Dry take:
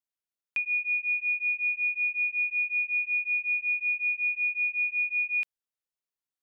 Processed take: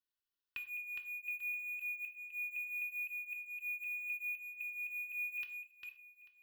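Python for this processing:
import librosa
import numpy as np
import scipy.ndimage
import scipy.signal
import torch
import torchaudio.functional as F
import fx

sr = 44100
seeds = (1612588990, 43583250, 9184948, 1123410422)

p1 = fx.reverse_delay(x, sr, ms=256, wet_db=-4.5)
p2 = fx.peak_eq(p1, sr, hz=2500.0, db=8.5, octaves=0.6)
p3 = p2 + 0.81 * np.pad(p2, (int(2.7 * sr / 1000.0), 0))[:len(p2)]
p4 = np.clip(10.0 ** (31.5 / 20.0) * p3, -1.0, 1.0) / 10.0 ** (31.5 / 20.0)
p5 = p3 + (p4 * librosa.db_to_amplitude(-6.0))
p6 = fx.fixed_phaser(p5, sr, hz=2300.0, stages=6)
p7 = p6 + fx.echo_single(p6, sr, ms=841, db=-19.5, dry=0)
p8 = fx.rev_gated(p7, sr, seeds[0], gate_ms=150, shape='falling', drr_db=7.0)
y = p8 * librosa.db_to_amplitude(-7.0)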